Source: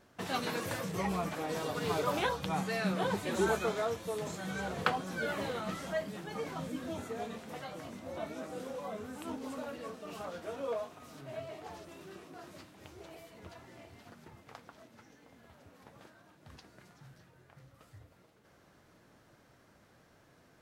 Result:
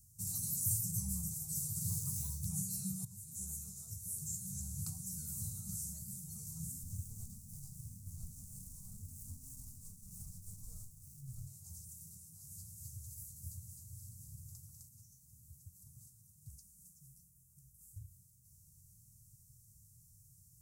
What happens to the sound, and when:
1.89–2.46 s: decimation joined by straight lines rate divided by 2×
3.05–5.61 s: fade in equal-power, from -16 dB
6.83–11.47 s: sliding maximum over 17 samples
12.35–14.89 s: two-band feedback delay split 690 Hz, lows 110 ms, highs 258 ms, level -3 dB
16.49–17.96 s: static phaser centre 550 Hz, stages 8
whole clip: inverse Chebyshev band-stop 290–3400 Hz, stop band 50 dB; bass shelf 170 Hz -10.5 dB; trim +15.5 dB

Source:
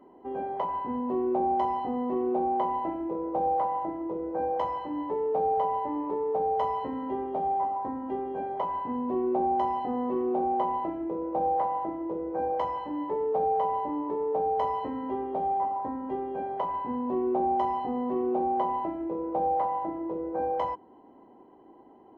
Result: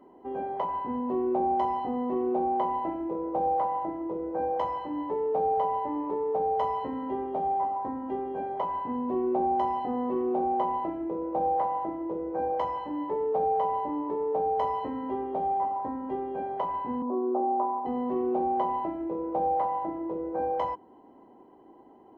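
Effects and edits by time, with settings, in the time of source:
17.02–17.86 s: elliptic band-pass 240–1300 Hz

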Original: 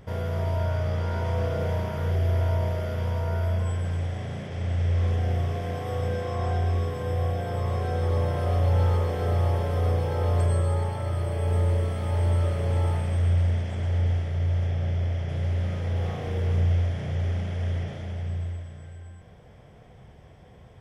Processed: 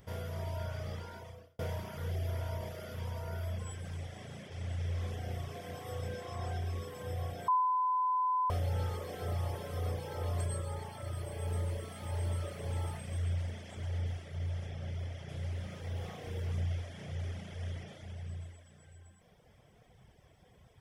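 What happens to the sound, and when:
0.94–1.59 s: fade out
7.48–8.50 s: bleep 1.01 kHz -15.5 dBFS
whole clip: pre-emphasis filter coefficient 0.8; reverb removal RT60 0.97 s; treble shelf 4.7 kHz -5.5 dB; trim +4.5 dB

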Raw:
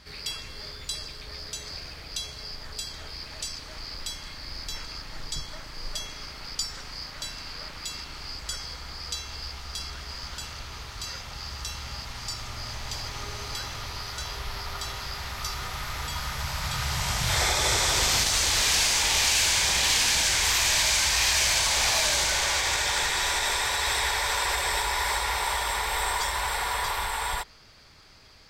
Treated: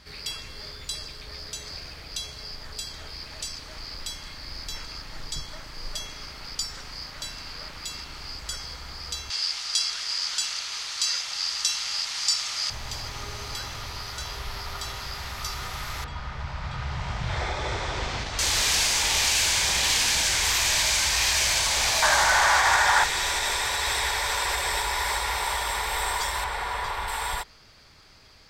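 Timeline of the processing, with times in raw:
9.30–12.70 s: frequency weighting ITU-R 468
16.04–18.39 s: tape spacing loss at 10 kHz 28 dB
22.02–23.04 s: high-order bell 1.1 kHz +11.5 dB
26.44–27.08 s: low-pass 2.6 kHz 6 dB/octave

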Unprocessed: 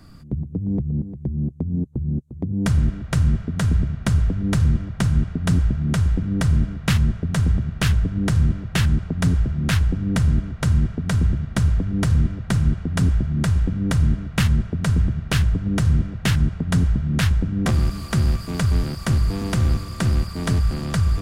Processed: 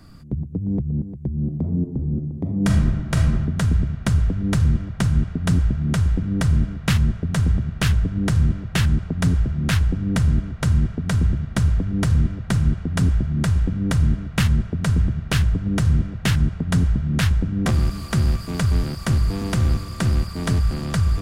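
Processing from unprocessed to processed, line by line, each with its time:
1.35–3.40 s: reverb throw, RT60 0.88 s, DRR 2.5 dB

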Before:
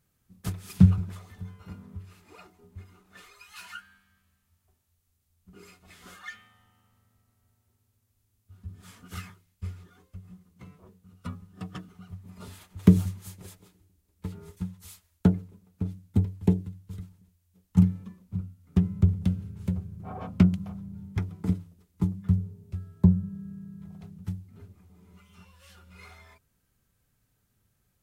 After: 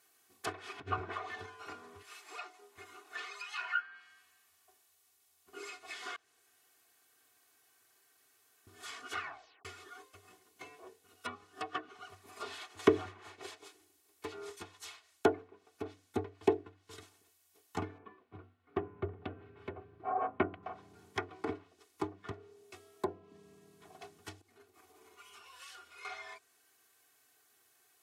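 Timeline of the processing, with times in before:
0.78–1.46 s: compressor with a negative ratio -22 dBFS, ratio -0.5
2.02–2.78 s: high-pass 770 Hz 6 dB/octave
6.16–8.67 s: room tone
9.20 s: tape stop 0.45 s
10.32–11.33 s: peaking EQ 1.2 kHz -7 dB 0.31 oct
17.98–20.63 s: distance through air 480 m
22.31–23.32 s: high-pass 320 Hz 6 dB/octave
24.41–26.05 s: compression 12:1, threshold -53 dBFS
whole clip: high-pass 550 Hz 12 dB/octave; low-pass that closes with the level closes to 1.9 kHz, closed at -43.5 dBFS; comb 2.7 ms, depth 91%; trim +6.5 dB

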